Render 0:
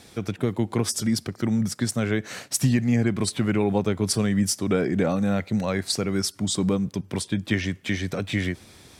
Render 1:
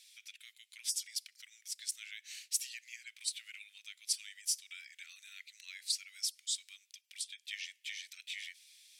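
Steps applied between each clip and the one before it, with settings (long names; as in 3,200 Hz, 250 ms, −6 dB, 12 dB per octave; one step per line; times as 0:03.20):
Butterworth high-pass 2,300 Hz 36 dB per octave
level −7.5 dB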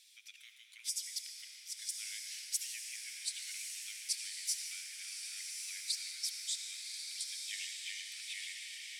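feedback delay with all-pass diffusion 1,145 ms, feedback 53%, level −4 dB
convolution reverb RT60 5.1 s, pre-delay 63 ms, DRR 2.5 dB
level −2.5 dB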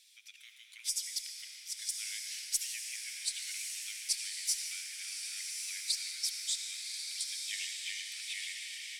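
automatic gain control gain up to 3.5 dB
harmonic generator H 2 −24 dB, 4 −29 dB, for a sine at −16.5 dBFS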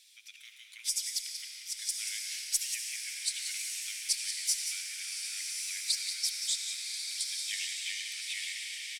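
single-tap delay 183 ms −9 dB
level +2.5 dB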